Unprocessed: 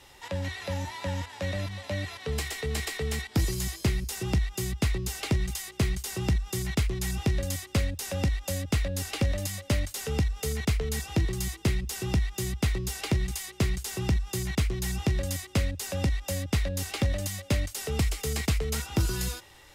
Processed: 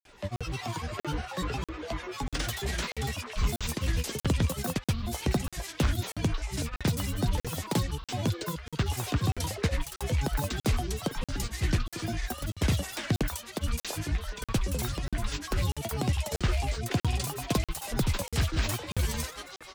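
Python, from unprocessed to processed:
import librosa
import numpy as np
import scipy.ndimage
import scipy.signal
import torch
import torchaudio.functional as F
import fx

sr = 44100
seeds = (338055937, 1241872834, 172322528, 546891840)

y = fx.echo_stepped(x, sr, ms=277, hz=760.0, octaves=1.4, feedback_pct=70, wet_db=-0.5)
y = fx.granulator(y, sr, seeds[0], grain_ms=100.0, per_s=20.0, spray_ms=100.0, spread_st=12)
y = fx.buffer_crackle(y, sr, first_s=0.36, period_s=0.64, block=2048, kind='zero')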